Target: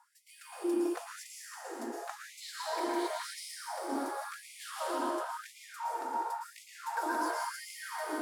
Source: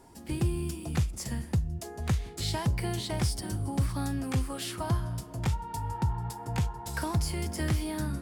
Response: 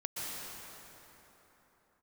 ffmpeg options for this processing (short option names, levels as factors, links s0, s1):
-filter_complex "[0:a]highshelf=f=1800:t=q:w=1.5:g=-7[s0];[1:a]atrim=start_sample=2205,asetrate=48510,aresample=44100[s1];[s0][s1]afir=irnorm=-1:irlink=0,afftfilt=real='re*gte(b*sr/1024,240*pow(2000/240,0.5+0.5*sin(2*PI*0.94*pts/sr)))':imag='im*gte(b*sr/1024,240*pow(2000/240,0.5+0.5*sin(2*PI*0.94*pts/sr)))':win_size=1024:overlap=0.75,volume=1.12"